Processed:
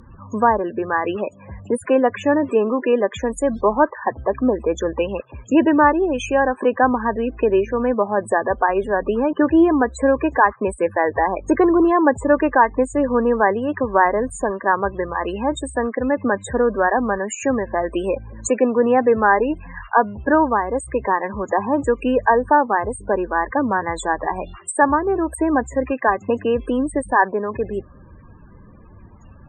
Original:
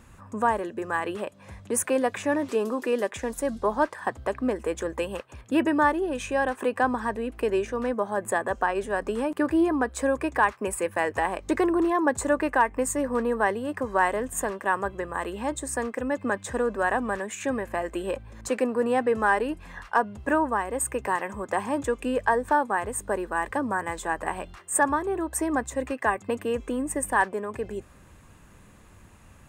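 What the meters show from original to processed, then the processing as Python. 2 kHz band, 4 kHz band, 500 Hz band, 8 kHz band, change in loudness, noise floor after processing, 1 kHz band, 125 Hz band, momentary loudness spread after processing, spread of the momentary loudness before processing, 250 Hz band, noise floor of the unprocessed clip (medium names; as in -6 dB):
+5.0 dB, no reading, +8.5 dB, -2.0 dB, +7.5 dB, -45 dBFS, +7.5 dB, +7.5 dB, 8 LU, 7 LU, +8.5 dB, -52 dBFS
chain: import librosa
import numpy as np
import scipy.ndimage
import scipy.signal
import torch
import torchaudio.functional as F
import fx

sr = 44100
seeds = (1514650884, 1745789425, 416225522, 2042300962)

y = fx.spec_topn(x, sr, count=32)
y = fx.high_shelf_res(y, sr, hz=3100.0, db=8.5, q=1.5)
y = fx.env_lowpass_down(y, sr, base_hz=2300.0, full_db=-23.0)
y = y * 10.0 ** (8.5 / 20.0)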